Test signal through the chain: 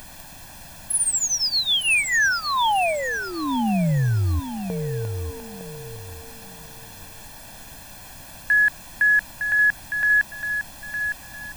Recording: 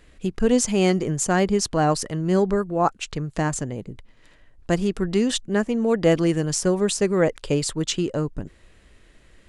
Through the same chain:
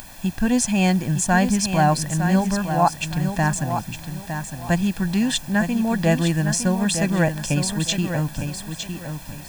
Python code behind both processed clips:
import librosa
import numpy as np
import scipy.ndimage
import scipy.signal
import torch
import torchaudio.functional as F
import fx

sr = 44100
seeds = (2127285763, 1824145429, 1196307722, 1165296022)

y = fx.bass_treble(x, sr, bass_db=13, treble_db=-13)
y = fx.dmg_noise_colour(y, sr, seeds[0], colour='brown', level_db=-34.0)
y = fx.riaa(y, sr, side='recording')
y = y + 0.81 * np.pad(y, (int(1.2 * sr / 1000.0), 0))[:len(y)]
y = fx.echo_feedback(y, sr, ms=909, feedback_pct=27, wet_db=-8)